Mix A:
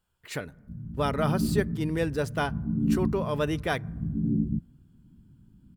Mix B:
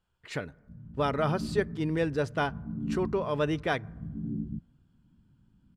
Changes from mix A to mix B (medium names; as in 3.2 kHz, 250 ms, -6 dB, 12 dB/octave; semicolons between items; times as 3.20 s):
background -8.0 dB; master: add distance through air 75 m